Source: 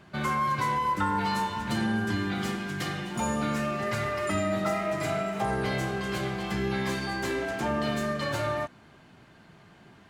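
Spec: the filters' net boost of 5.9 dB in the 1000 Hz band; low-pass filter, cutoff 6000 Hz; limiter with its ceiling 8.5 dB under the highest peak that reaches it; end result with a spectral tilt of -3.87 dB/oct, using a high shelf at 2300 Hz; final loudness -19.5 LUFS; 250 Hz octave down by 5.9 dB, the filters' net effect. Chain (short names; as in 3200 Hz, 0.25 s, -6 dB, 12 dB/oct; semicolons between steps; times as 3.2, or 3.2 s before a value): LPF 6000 Hz; bell 250 Hz -8.5 dB; bell 1000 Hz +8 dB; high shelf 2300 Hz -5 dB; gain +9.5 dB; limiter -10.5 dBFS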